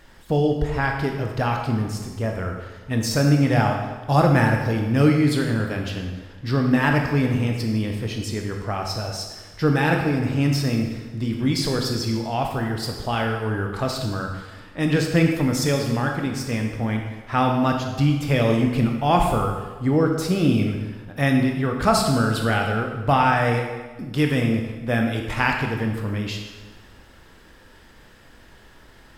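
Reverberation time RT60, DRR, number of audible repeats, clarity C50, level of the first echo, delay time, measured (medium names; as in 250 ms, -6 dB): 1.3 s, 2.0 dB, no echo, 4.0 dB, no echo, no echo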